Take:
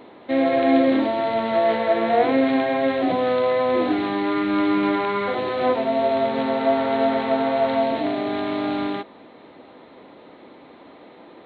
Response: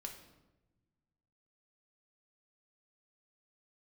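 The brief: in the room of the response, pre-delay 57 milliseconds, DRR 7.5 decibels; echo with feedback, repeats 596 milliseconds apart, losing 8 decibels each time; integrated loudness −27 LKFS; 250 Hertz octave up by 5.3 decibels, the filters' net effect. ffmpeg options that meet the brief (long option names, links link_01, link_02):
-filter_complex "[0:a]equalizer=frequency=250:width_type=o:gain=6,aecho=1:1:596|1192|1788|2384|2980:0.398|0.159|0.0637|0.0255|0.0102,asplit=2[link_01][link_02];[1:a]atrim=start_sample=2205,adelay=57[link_03];[link_02][link_03]afir=irnorm=-1:irlink=0,volume=-4dB[link_04];[link_01][link_04]amix=inputs=2:normalize=0,volume=-10dB"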